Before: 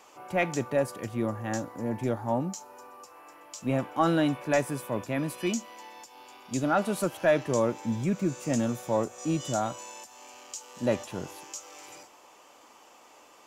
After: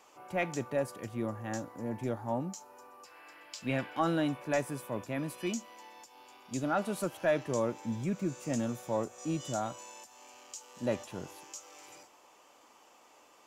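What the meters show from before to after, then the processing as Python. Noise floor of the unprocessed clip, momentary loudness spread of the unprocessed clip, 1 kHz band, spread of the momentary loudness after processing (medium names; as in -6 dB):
-55 dBFS, 20 LU, -5.5 dB, 21 LU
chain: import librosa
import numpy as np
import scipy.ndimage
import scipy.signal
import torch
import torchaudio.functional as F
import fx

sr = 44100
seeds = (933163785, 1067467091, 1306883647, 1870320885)

y = fx.spec_box(x, sr, start_s=3.05, length_s=0.95, low_hz=1400.0, high_hz=5300.0, gain_db=9)
y = y * 10.0 ** (-5.5 / 20.0)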